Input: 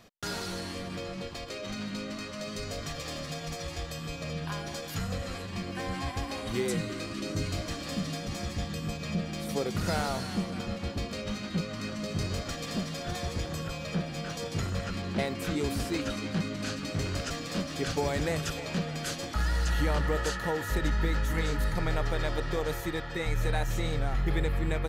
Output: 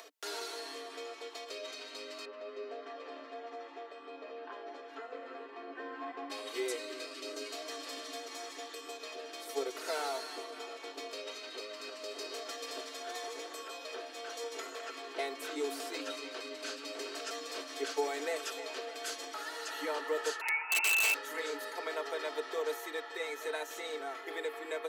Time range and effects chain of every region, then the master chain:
2.25–6.30 s: low-pass 1.9 kHz + bass shelf 320 Hz +9 dB + comb of notches 160 Hz
20.41–21.14 s: frequency inversion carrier 2.7 kHz + integer overflow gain 18 dB
whole clip: comb 4.5 ms, depth 79%; upward compressor, threshold -37 dBFS; steep high-pass 290 Hz 96 dB/octave; trim -6 dB

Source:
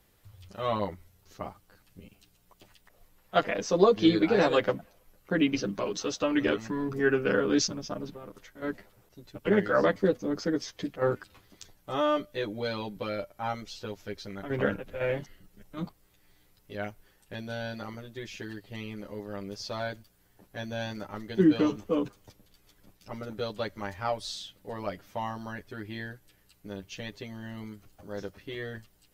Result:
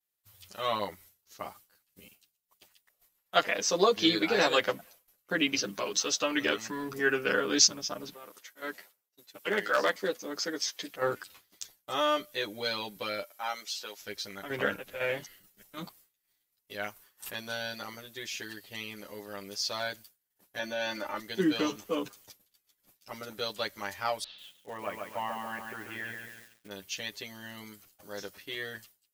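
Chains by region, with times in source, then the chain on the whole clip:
8.14–10.94 s: high-pass 380 Hz 6 dB/octave + hard clipper -16.5 dBFS
13.23–14.02 s: high-pass 250 Hz + bass shelf 430 Hz -8 dB
16.84–17.57 s: peaking EQ 1.1 kHz +8.5 dB 0.51 oct + swell ahead of each attack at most 130 dB/s
20.59–21.20 s: tone controls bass -7 dB, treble -11 dB + comb 3.4 ms, depth 84% + level flattener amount 50%
24.24–26.71 s: Chebyshev low-pass 2.8 kHz, order 4 + bit-crushed delay 139 ms, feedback 55%, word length 10-bit, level -4 dB
whole clip: expander -49 dBFS; tilt EQ +3.5 dB/octave

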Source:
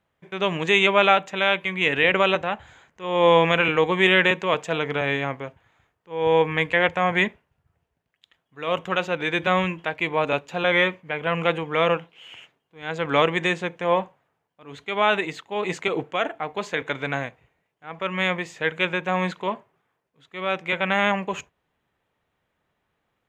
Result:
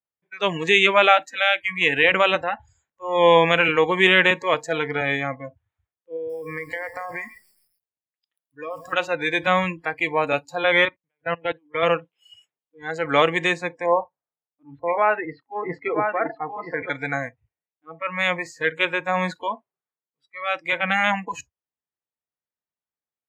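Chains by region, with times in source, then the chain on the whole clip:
6.16–8.93 s: high-pass 96 Hz 6 dB/octave + compression 12:1, threshold -26 dBFS + bit-crushed delay 135 ms, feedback 55%, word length 8-bit, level -10.5 dB
10.85–11.83 s: brick-wall FIR low-pass 4.3 kHz + level held to a coarse grid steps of 24 dB + three bands expanded up and down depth 70%
13.86–16.90 s: low-pass 1.7 kHz + delay 974 ms -4.5 dB
whole clip: spectral noise reduction 28 dB; bass shelf 230 Hz -5 dB; trim +2.5 dB

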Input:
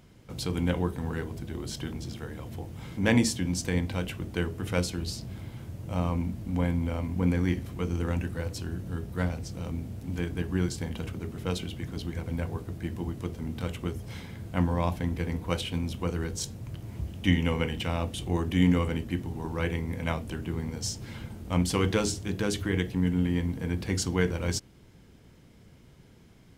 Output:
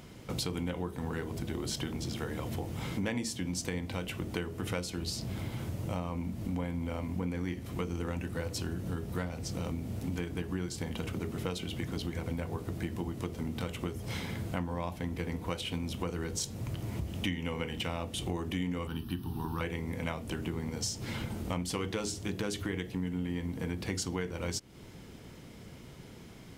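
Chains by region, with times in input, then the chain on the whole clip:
18.87–19.61 s: treble shelf 9.2 kHz +11.5 dB + static phaser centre 2.1 kHz, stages 6
whole clip: bass shelf 140 Hz -6.5 dB; compression 6:1, threshold -40 dBFS; band-stop 1.6 kHz, Q 21; trim +8 dB

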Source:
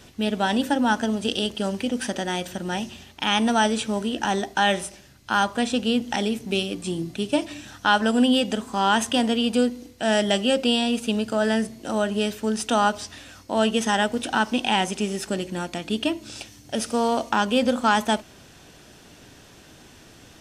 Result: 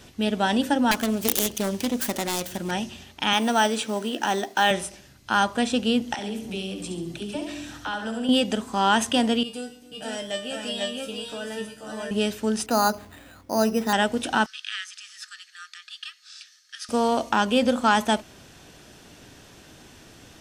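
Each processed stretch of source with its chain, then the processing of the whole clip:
0.91–2.71 s: self-modulated delay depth 0.57 ms + treble shelf 7.5 kHz +8.5 dB
3.33–4.71 s: high-pass 240 Hz + companded quantiser 6-bit
6.14–8.29 s: compression 2.5:1, threshold -31 dBFS + phase dispersion lows, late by 50 ms, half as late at 330 Hz + flutter echo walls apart 11.7 m, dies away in 0.57 s
9.43–12.11 s: treble shelf 9.7 kHz +8 dB + feedback comb 150 Hz, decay 0.28 s, mix 90% + multi-tap echo 120/275/485/500 ms -18/-19/-5.5/-5 dB
12.66–13.93 s: treble shelf 2.2 kHz -6.5 dB + hum notches 50/100/150/200/250/300/350/400/450 Hz + careless resampling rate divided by 8×, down filtered, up hold
14.46–16.89 s: rippled Chebyshev high-pass 1.2 kHz, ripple 9 dB + treble shelf 9.5 kHz -10.5 dB
whole clip: none

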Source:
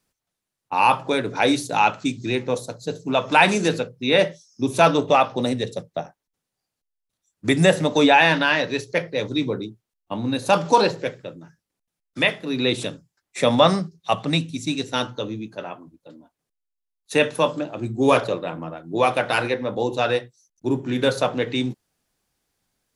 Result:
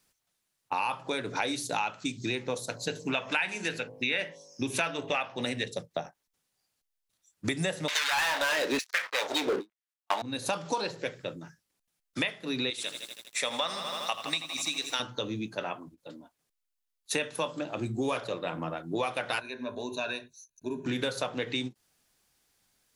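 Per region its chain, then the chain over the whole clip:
2.68–5.68 s: high-order bell 2.1 kHz +8 dB 1.2 oct + de-hum 51.34 Hz, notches 22
7.88–10.22 s: waveshaping leveller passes 5 + LFO high-pass saw down 1.1 Hz 250–2300 Hz + hard clipper -2.5 dBFS
12.70–15.00 s: high-pass 1.2 kHz 6 dB/octave + bit-crushed delay 81 ms, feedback 80%, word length 8-bit, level -12 dB
19.40–20.86 s: compression 1.5:1, threshold -56 dBFS + rippled EQ curve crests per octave 1.5, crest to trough 15 dB
whole clip: tilt shelf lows -3.5 dB, about 1.1 kHz; compression 6:1, threshold -30 dBFS; endings held to a fixed fall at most 470 dB/s; trim +1.5 dB

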